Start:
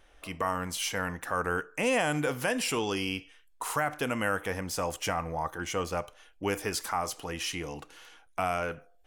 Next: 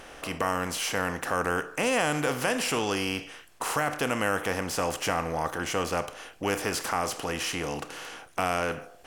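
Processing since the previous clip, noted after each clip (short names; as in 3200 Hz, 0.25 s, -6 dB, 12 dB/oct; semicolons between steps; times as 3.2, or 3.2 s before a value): per-bin compression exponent 0.6; gain -1 dB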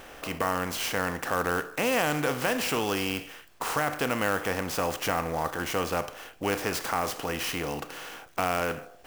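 clock jitter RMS 0.023 ms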